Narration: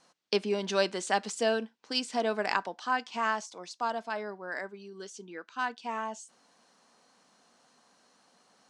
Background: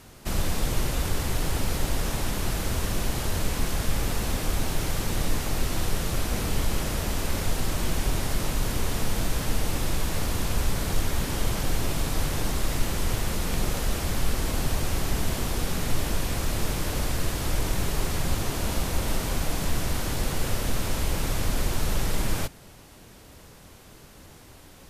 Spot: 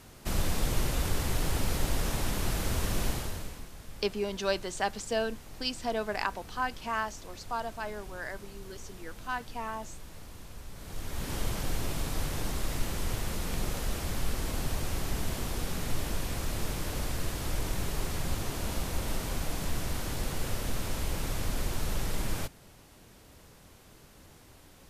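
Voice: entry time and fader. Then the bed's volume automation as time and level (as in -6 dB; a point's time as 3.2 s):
3.70 s, -2.5 dB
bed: 3.09 s -3 dB
3.7 s -20 dB
10.69 s -20 dB
11.32 s -6 dB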